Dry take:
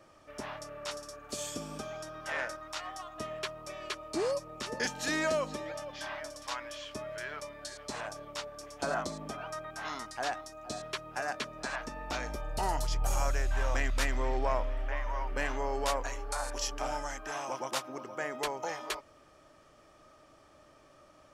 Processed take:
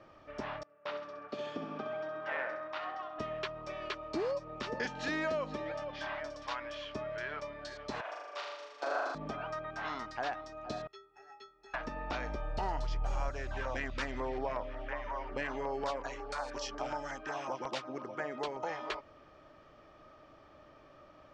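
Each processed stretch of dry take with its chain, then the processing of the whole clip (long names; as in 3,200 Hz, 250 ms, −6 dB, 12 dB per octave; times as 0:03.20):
0:00.63–0:03.19: noise gate with hold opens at −35 dBFS, closes at −45 dBFS + band-pass filter 190–2,900 Hz + repeating echo 66 ms, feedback 41%, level −8.5 dB
0:08.01–0:09.15: high-pass filter 390 Hz 24 dB per octave + flutter between parallel walls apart 6.8 metres, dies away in 1.4 s + expander for the loud parts, over −43 dBFS
0:10.87–0:11.74: bass and treble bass +1 dB, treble +6 dB + notch filter 7,900 Hz, Q 7.3 + stiff-string resonator 390 Hz, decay 0.48 s, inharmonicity 0.03
0:13.29–0:18.63: high-pass filter 71 Hz + high-shelf EQ 9,400 Hz +6 dB + auto-filter notch saw down 5.5 Hz 520–4,000 Hz
whole clip: Bessel low-pass filter 3,300 Hz, order 4; downward compressor 2 to 1, threshold −37 dBFS; level +2 dB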